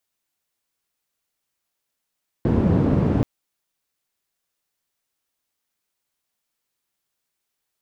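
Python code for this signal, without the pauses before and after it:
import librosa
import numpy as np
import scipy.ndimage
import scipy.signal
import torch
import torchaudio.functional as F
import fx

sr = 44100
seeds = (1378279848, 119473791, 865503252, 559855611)

y = fx.band_noise(sr, seeds[0], length_s=0.78, low_hz=90.0, high_hz=210.0, level_db=-18.5)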